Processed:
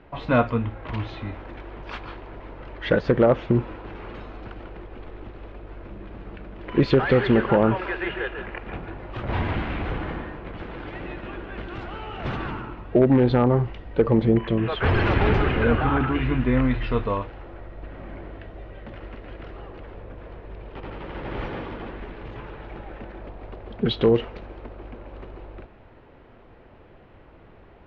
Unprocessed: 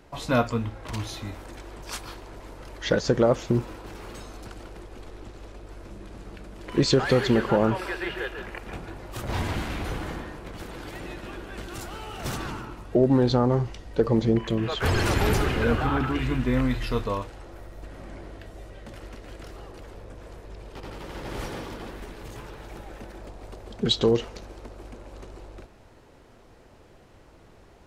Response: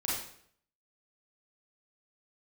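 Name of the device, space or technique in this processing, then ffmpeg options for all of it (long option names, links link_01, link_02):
synthesiser wavefolder: -af "aeval=exprs='0.266*(abs(mod(val(0)/0.266+3,4)-2)-1)':channel_layout=same,lowpass=frequency=3000:width=0.5412,lowpass=frequency=3000:width=1.3066,volume=3dB"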